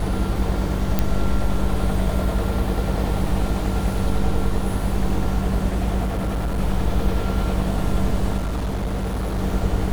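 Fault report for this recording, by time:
buzz 50 Hz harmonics 22 -25 dBFS
0.99 pop -6 dBFS
6.05–6.59 clipped -19.5 dBFS
8.37–9.38 clipped -20.5 dBFS

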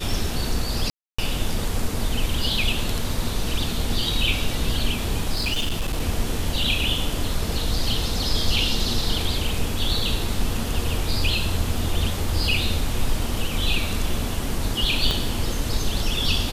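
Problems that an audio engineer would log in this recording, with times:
0.9–1.19 gap 0.285 s
5.34–6.01 clipped -19.5 dBFS
15.11 pop -9 dBFS

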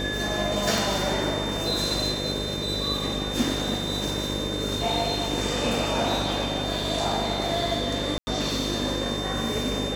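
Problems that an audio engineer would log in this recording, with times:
buzz 50 Hz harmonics 12 -32 dBFS
crackle 18/s
tone 3600 Hz -32 dBFS
0.78 pop
8.18–8.27 gap 90 ms

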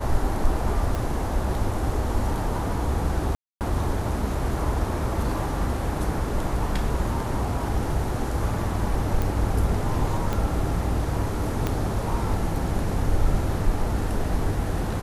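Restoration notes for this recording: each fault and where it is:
0.95 pop
3.35–3.61 gap 0.258 s
9.22 pop
10.33 pop -13 dBFS
11.67 pop -11 dBFS

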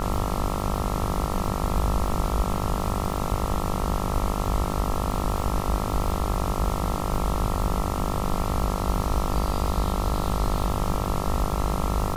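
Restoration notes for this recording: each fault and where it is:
buzz 50 Hz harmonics 27 -30 dBFS
crackle 120/s -32 dBFS

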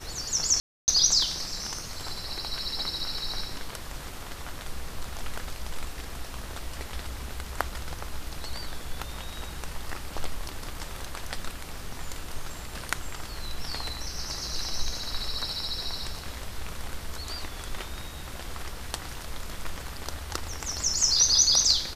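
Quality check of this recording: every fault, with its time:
0.6–0.88 gap 0.279 s

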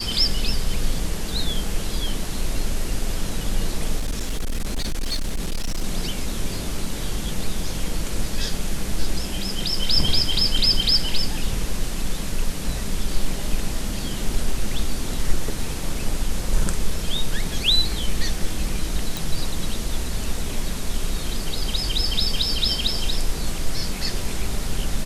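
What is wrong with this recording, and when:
3.99–5.84 clipped -20 dBFS
19.17 pop

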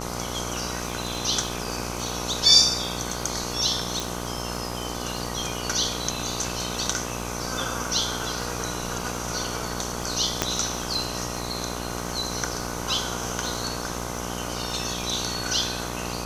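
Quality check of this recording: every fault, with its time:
buzz 60 Hz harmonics 21 -33 dBFS
crackle 52/s -34 dBFS
4 pop
10.42 pop -5 dBFS

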